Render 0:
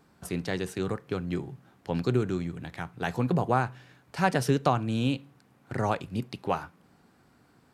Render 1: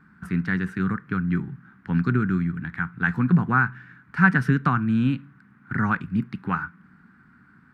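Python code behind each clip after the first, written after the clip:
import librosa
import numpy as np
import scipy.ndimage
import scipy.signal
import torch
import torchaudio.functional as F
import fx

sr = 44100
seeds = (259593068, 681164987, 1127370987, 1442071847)

y = fx.curve_eq(x, sr, hz=(120.0, 200.0, 600.0, 1500.0, 3000.0, 6300.0), db=(0, 8, -20, 11, -10, -18))
y = y * librosa.db_to_amplitude(4.0)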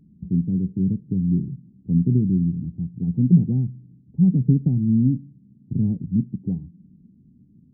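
y = scipy.ndimage.gaussian_filter1d(x, 24.0, mode='constant')
y = y * librosa.db_to_amplitude(5.5)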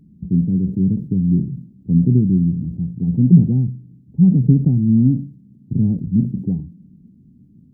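y = fx.sustainer(x, sr, db_per_s=130.0)
y = y * librosa.db_to_amplitude(4.5)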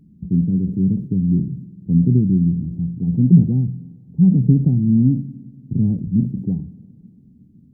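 y = fx.rev_spring(x, sr, rt60_s=2.5, pass_ms=(47, 58), chirp_ms=60, drr_db=19.0)
y = y * librosa.db_to_amplitude(-1.0)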